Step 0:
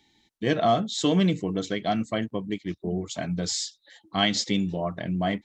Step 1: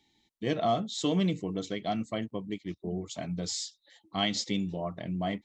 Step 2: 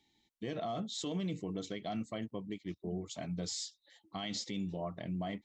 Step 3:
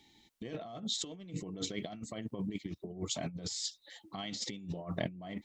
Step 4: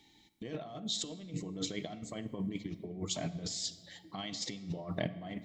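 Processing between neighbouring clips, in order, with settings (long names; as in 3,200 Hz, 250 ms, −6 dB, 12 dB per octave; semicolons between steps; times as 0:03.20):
parametric band 1,600 Hz −7 dB 0.3 octaves; level −5.5 dB
brickwall limiter −25 dBFS, peak gain reduction 10 dB; level −4 dB
compressor whose output falls as the input rises −43 dBFS, ratio −0.5; level +4.5 dB
rectangular room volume 2,200 cubic metres, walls mixed, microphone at 0.48 metres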